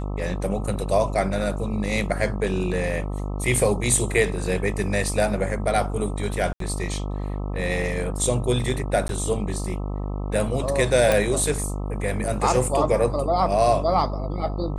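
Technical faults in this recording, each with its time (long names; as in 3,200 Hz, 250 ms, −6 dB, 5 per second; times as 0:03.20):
mains buzz 50 Hz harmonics 26 −28 dBFS
0:06.53–0:06.60: drop-out 73 ms
0:09.08–0:09.09: drop-out 12 ms
0:11.12: click −6 dBFS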